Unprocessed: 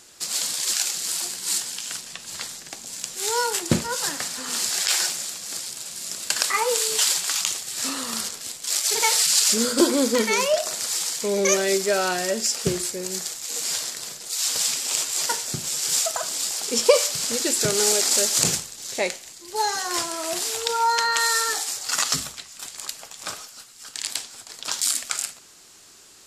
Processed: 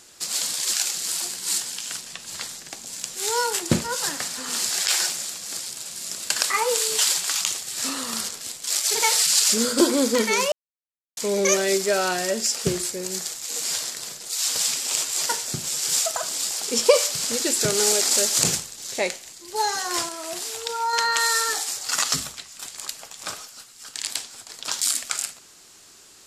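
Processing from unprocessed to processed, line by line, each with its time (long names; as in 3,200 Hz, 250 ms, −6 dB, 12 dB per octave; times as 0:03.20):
0:10.52–0:11.17: silence
0:20.09–0:20.93: clip gain −4.5 dB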